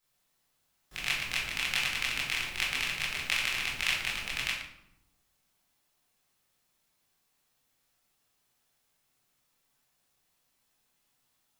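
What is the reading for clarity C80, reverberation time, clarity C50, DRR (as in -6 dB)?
5.5 dB, 0.85 s, 2.0 dB, -7.5 dB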